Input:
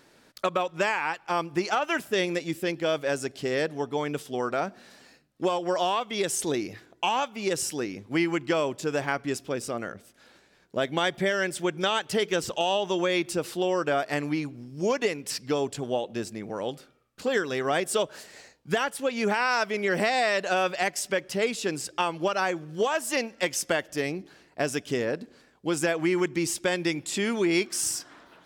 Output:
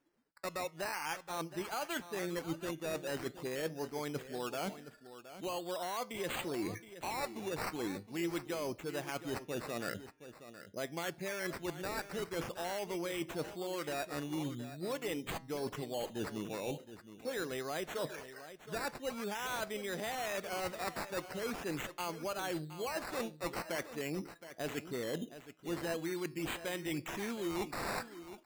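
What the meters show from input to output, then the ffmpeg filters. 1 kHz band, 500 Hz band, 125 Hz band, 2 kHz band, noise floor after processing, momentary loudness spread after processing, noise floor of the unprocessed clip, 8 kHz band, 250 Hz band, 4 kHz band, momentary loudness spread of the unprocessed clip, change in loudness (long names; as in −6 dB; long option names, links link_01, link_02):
−12.0 dB, −12.0 dB, −8.5 dB, −12.5 dB, −58 dBFS, 5 LU, −60 dBFS, −13.0 dB, −10.5 dB, −12.0 dB, 8 LU, −12.0 dB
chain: -filter_complex "[0:a]afftdn=noise_reduction=25:noise_floor=-44,areverse,acompressor=threshold=-36dB:ratio=12,areverse,acrusher=samples=11:mix=1:aa=0.000001:lfo=1:lforange=6.6:lforate=0.44,asplit=2[link_01][link_02];[link_02]asoftclip=type=tanh:threshold=-34.5dB,volume=-8dB[link_03];[link_01][link_03]amix=inputs=2:normalize=0,flanger=delay=5.6:depth=1.1:regen=89:speed=0.47:shape=triangular,aecho=1:1:719:0.224,volume=3dB"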